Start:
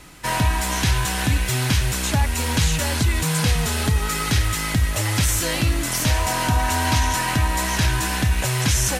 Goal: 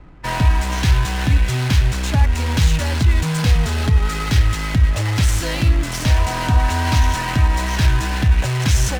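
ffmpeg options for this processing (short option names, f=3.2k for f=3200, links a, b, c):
-filter_complex "[0:a]lowshelf=f=89:g=10,acrossover=split=390[a][b];[b]adynamicsmooth=sensitivity=6:basefreq=1k[c];[a][c]amix=inputs=2:normalize=0"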